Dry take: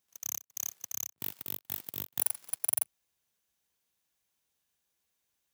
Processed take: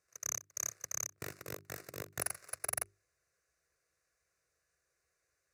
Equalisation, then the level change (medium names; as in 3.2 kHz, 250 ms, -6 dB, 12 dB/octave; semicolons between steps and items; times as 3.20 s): distance through air 78 m; hum notches 50/100/150/200/250/300/350/400 Hz; static phaser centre 880 Hz, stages 6; +9.0 dB